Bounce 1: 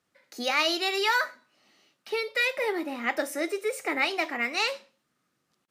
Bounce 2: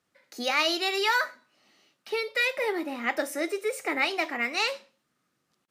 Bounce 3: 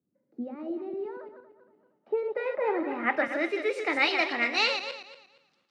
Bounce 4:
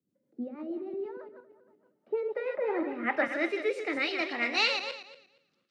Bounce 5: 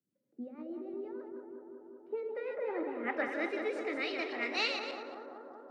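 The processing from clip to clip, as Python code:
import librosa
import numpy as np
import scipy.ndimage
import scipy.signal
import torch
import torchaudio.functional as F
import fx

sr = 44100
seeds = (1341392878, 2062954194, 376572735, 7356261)

y1 = x
y2 = fx.reverse_delay_fb(y1, sr, ms=117, feedback_pct=48, wet_db=-7)
y2 = fx.filter_sweep_lowpass(y2, sr, from_hz=280.0, to_hz=4300.0, start_s=1.43, end_s=3.91, q=1.3)
y2 = scipy.signal.sosfilt(scipy.signal.butter(2, 120.0, 'highpass', fs=sr, output='sos'), y2)
y3 = fx.rotary_switch(y2, sr, hz=6.3, then_hz=0.7, switch_at_s=2.25)
y4 = fx.echo_bbd(y3, sr, ms=190, stages=2048, feedback_pct=78, wet_db=-6.5)
y4 = y4 * 10.0 ** (-6.5 / 20.0)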